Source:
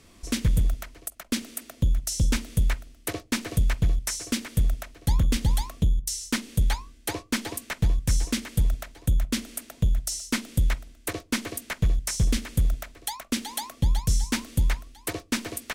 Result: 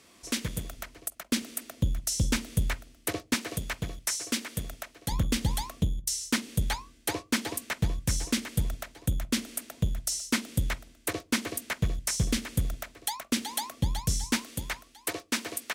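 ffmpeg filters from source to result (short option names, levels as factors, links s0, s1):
-af "asetnsamples=n=441:p=0,asendcmd='0.77 highpass f 90;3.34 highpass f 340;5.12 highpass f 110;14.37 highpass f 410',highpass=f=380:p=1"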